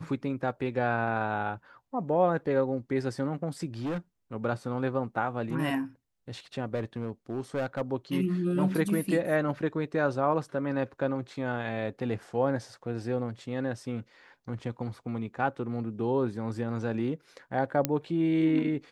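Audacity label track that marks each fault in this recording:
3.790000	3.980000	clipping −29 dBFS
6.740000	7.820000	clipping −26 dBFS
17.850000	17.850000	click −9 dBFS

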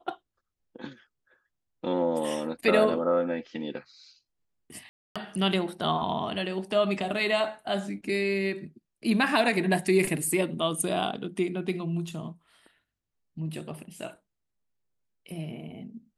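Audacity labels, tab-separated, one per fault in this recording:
4.890000	5.160000	drop-out 266 ms

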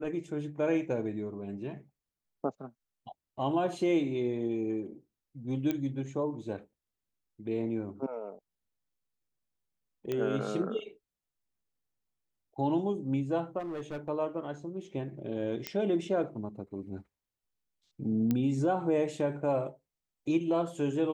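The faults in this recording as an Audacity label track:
5.710000	5.710000	click −18 dBFS
10.120000	10.120000	click −20 dBFS
13.590000	14.090000	clipping −34 dBFS
15.670000	15.670000	click −16 dBFS
18.310000	18.310000	click −17 dBFS

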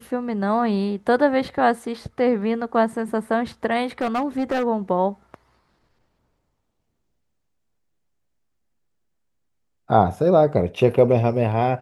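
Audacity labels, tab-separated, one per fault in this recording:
4.010000	4.640000	clipping −18 dBFS

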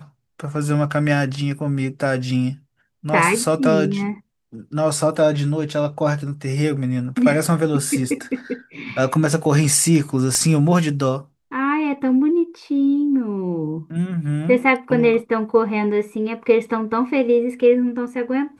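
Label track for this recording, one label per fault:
10.350000	10.350000	click −9 dBFS

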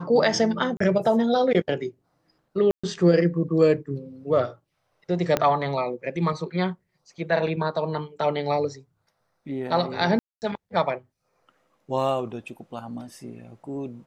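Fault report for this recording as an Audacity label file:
0.770000	0.800000	drop-out 34 ms
2.710000	2.830000	drop-out 125 ms
5.370000	5.370000	click −8 dBFS
10.190000	10.420000	drop-out 229 ms

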